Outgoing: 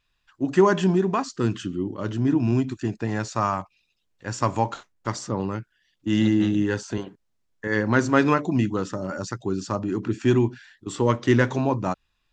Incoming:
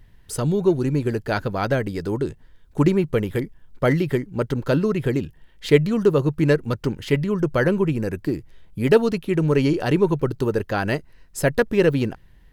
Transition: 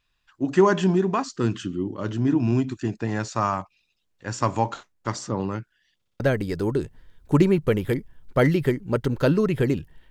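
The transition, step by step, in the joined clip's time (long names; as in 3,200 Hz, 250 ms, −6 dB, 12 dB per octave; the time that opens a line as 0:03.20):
outgoing
0:05.96: stutter in place 0.06 s, 4 plays
0:06.20: continue with incoming from 0:01.66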